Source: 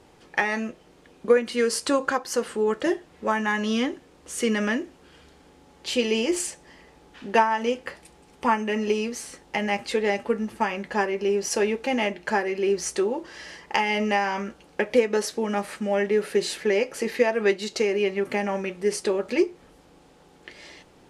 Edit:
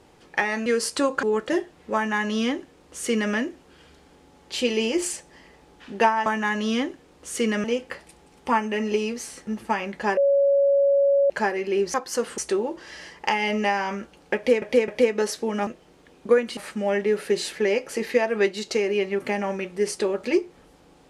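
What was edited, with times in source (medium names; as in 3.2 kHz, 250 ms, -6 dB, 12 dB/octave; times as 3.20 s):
0.66–1.56 s: move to 15.62 s
2.13–2.57 s: move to 12.85 s
3.29–4.67 s: copy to 7.60 s
9.43–10.38 s: delete
11.08–12.21 s: bleep 559 Hz -15.5 dBFS
14.83–15.09 s: loop, 3 plays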